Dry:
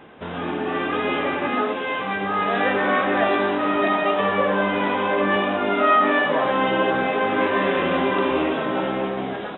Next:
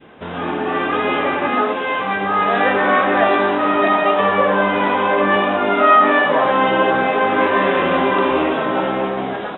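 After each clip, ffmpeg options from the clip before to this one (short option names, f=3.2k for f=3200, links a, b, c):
-af "adynamicequalizer=threshold=0.0224:dfrequency=980:dqfactor=0.71:tfrequency=980:tqfactor=0.71:attack=5:release=100:ratio=0.375:range=2:mode=boostabove:tftype=bell,volume=2.5dB"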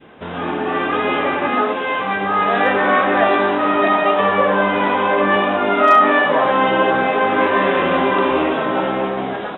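-af "asoftclip=type=hard:threshold=-3dB"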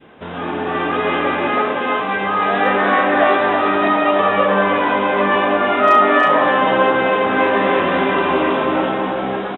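-af "aecho=1:1:321:0.631,volume=-1dB"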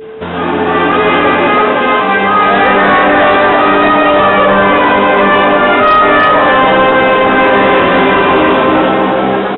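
-af "apsyclip=12.5dB,aeval=exprs='val(0)+0.0794*sin(2*PI*440*n/s)':c=same,aresample=11025,aresample=44100,volume=-2.5dB"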